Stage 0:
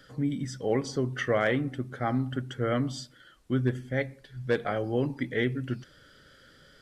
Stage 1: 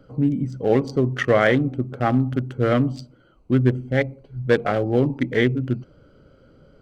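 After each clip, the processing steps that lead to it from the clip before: local Wiener filter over 25 samples; trim +9 dB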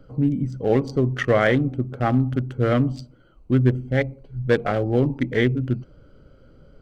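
bass shelf 64 Hz +12 dB; trim -1.5 dB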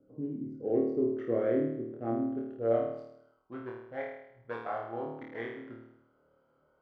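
band-pass sweep 360 Hz -> 930 Hz, 2.03–3.21 s; flutter echo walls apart 4.5 m, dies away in 0.77 s; trim -7.5 dB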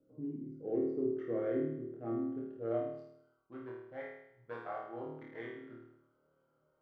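reverberation, pre-delay 6 ms, DRR 4 dB; trim -7.5 dB

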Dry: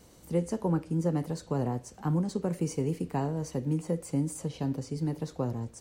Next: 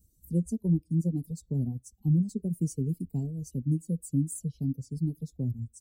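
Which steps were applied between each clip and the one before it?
expander on every frequency bin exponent 1.5; Chebyshev band-stop 210–9100 Hz, order 2; reverb removal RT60 0.8 s; trim +6.5 dB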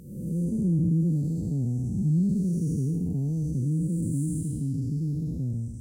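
spectral blur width 413 ms; trim +8.5 dB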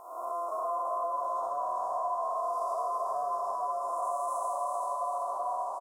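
compression, threshold -29 dBFS, peak gain reduction 8.5 dB; ring modulator 860 Hz; on a send: feedback delay 384 ms, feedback 54%, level -3 dB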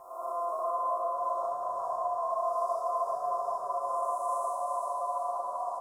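reverberation RT60 1.9 s, pre-delay 6 ms, DRR -1 dB; trim -4.5 dB

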